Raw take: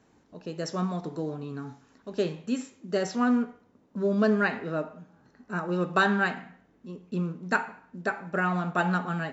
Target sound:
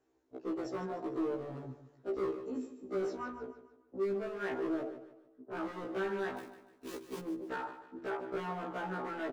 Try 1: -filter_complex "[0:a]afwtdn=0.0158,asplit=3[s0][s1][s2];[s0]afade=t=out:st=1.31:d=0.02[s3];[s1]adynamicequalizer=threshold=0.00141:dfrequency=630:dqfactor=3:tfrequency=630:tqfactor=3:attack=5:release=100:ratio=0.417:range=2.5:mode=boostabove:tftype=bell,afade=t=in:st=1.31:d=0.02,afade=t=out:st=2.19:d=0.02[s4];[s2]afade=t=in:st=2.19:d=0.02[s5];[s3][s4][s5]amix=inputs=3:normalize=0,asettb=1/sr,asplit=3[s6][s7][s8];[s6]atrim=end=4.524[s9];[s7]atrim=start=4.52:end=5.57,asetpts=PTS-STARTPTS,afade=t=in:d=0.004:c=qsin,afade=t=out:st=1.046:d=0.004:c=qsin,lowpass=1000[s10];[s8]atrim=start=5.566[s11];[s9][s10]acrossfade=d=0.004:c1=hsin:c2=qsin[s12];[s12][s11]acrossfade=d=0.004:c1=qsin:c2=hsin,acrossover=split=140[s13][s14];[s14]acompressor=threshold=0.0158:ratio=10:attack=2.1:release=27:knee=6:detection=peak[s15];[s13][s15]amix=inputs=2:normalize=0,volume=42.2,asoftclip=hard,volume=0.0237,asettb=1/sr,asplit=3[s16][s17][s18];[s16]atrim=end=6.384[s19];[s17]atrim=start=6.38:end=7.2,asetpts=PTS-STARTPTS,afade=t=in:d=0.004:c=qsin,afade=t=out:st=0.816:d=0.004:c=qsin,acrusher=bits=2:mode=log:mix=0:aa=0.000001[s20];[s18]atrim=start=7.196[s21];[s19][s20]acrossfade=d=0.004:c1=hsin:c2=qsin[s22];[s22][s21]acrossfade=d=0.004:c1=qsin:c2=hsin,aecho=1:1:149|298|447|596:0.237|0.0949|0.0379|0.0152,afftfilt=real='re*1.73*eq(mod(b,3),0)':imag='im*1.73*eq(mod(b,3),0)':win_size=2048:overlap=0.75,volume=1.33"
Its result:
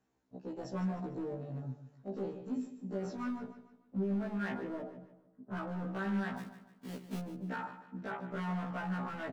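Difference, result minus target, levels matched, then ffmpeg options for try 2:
250 Hz band +3.0 dB
-filter_complex "[0:a]afwtdn=0.0158,asplit=3[s0][s1][s2];[s0]afade=t=out:st=1.31:d=0.02[s3];[s1]adynamicequalizer=threshold=0.00141:dfrequency=630:dqfactor=3:tfrequency=630:tqfactor=3:attack=5:release=100:ratio=0.417:range=2.5:mode=boostabove:tftype=bell,afade=t=in:st=1.31:d=0.02,afade=t=out:st=2.19:d=0.02[s4];[s2]afade=t=in:st=2.19:d=0.02[s5];[s3][s4][s5]amix=inputs=3:normalize=0,asettb=1/sr,asplit=3[s6][s7][s8];[s6]atrim=end=4.524[s9];[s7]atrim=start=4.52:end=5.57,asetpts=PTS-STARTPTS,afade=t=in:d=0.004:c=qsin,afade=t=out:st=1.046:d=0.004:c=qsin,lowpass=1000[s10];[s8]atrim=start=5.566[s11];[s9][s10]acrossfade=d=0.004:c1=hsin:c2=qsin[s12];[s12][s11]acrossfade=d=0.004:c1=qsin:c2=hsin,acrossover=split=140[s13][s14];[s14]acompressor=threshold=0.0158:ratio=10:attack=2.1:release=27:knee=6:detection=peak,highpass=f=350:t=q:w=3.7[s15];[s13][s15]amix=inputs=2:normalize=0,volume=42.2,asoftclip=hard,volume=0.0237,asettb=1/sr,asplit=3[s16][s17][s18];[s16]atrim=end=6.384[s19];[s17]atrim=start=6.38:end=7.2,asetpts=PTS-STARTPTS,afade=t=in:d=0.004:c=qsin,afade=t=out:st=0.816:d=0.004:c=qsin,acrusher=bits=2:mode=log:mix=0:aa=0.000001[s20];[s18]atrim=start=7.196[s21];[s19][s20]acrossfade=d=0.004:c1=hsin:c2=qsin[s22];[s22][s21]acrossfade=d=0.004:c1=qsin:c2=hsin,aecho=1:1:149|298|447|596:0.237|0.0949|0.0379|0.0152,afftfilt=real='re*1.73*eq(mod(b,3),0)':imag='im*1.73*eq(mod(b,3),0)':win_size=2048:overlap=0.75,volume=1.33"

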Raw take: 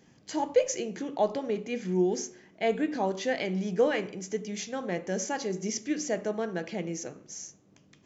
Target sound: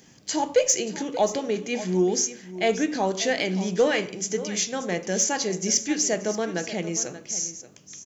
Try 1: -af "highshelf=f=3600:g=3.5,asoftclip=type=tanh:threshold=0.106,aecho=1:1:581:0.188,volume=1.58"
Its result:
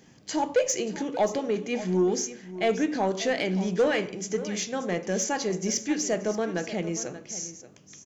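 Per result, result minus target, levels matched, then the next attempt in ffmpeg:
saturation: distortion +11 dB; 8 kHz band -4.0 dB
-af "highshelf=f=3600:g=3.5,asoftclip=type=tanh:threshold=0.251,aecho=1:1:581:0.188,volume=1.58"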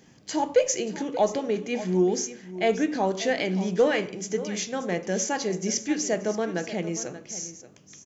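8 kHz band -5.0 dB
-af "highshelf=f=3600:g=12.5,asoftclip=type=tanh:threshold=0.251,aecho=1:1:581:0.188,volume=1.58"

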